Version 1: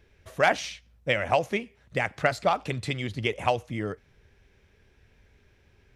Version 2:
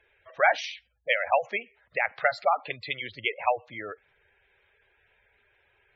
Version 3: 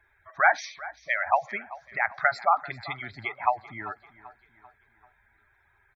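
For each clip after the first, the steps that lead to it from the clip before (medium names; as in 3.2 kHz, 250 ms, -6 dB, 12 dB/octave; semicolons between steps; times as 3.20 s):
three-band isolator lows -19 dB, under 520 Hz, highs -18 dB, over 5.6 kHz; spectral gate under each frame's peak -15 dB strong; trim +2.5 dB
static phaser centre 1.2 kHz, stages 4; feedback delay 390 ms, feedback 47%, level -18 dB; trim +5 dB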